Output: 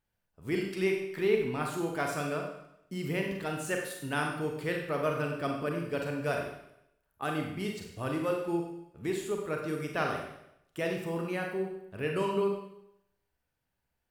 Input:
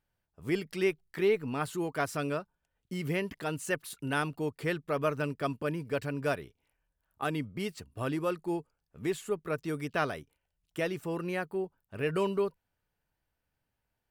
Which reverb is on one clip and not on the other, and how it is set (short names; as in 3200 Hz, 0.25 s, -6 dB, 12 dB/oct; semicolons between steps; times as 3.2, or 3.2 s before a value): Schroeder reverb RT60 0.78 s, combs from 32 ms, DRR 1 dB; gain -2 dB